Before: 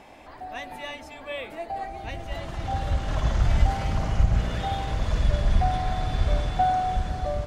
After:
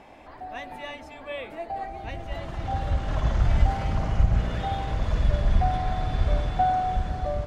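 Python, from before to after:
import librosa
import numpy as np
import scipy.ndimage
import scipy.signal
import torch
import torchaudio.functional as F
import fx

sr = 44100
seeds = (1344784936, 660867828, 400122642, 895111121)

y = fx.high_shelf(x, sr, hz=3900.0, db=-8.0)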